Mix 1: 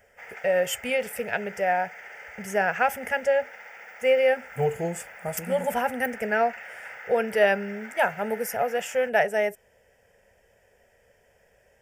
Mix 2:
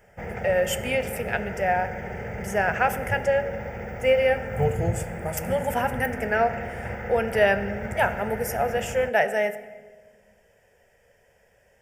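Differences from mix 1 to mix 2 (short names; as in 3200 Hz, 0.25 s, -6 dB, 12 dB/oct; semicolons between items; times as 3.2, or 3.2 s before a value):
background: remove HPF 1400 Hz 12 dB/oct; reverb: on, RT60 1.4 s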